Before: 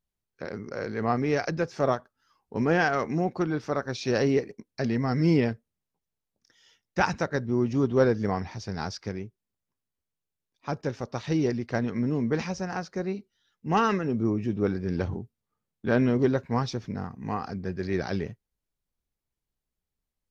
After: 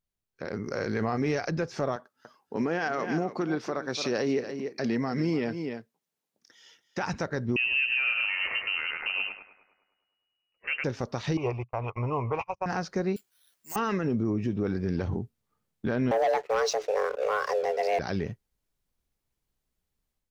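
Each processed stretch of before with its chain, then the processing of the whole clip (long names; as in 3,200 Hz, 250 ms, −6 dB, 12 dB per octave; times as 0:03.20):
0:00.65–0:01.39: high-shelf EQ 5,300 Hz +7 dB + double-tracking delay 19 ms −13.5 dB
0:01.96–0:07.03: high-pass filter 200 Hz + single-tap delay 287 ms −14.5 dB
0:07.56–0:10.84: feedback echo with a high-pass in the loop 103 ms, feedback 61%, high-pass 390 Hz, level −7 dB + leveller curve on the samples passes 1 + voice inversion scrambler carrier 2,900 Hz
0:11.37–0:12.66: noise gate −31 dBFS, range −44 dB + drawn EQ curve 120 Hz 0 dB, 200 Hz −24 dB, 350 Hz −8 dB, 1,100 Hz +14 dB, 1,700 Hz −18 dB, 2,500 Hz +8 dB, 3,900 Hz −19 dB, 7,800 Hz −12 dB
0:13.16–0:13.76: first difference + bad sample-rate conversion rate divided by 6×, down none, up zero stuff
0:16.11–0:17.99: frequency shifter +320 Hz + leveller curve on the samples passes 2
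whole clip: downward compressor 2.5 to 1, threshold −30 dBFS; brickwall limiter −24 dBFS; automatic gain control gain up to 8 dB; level −3 dB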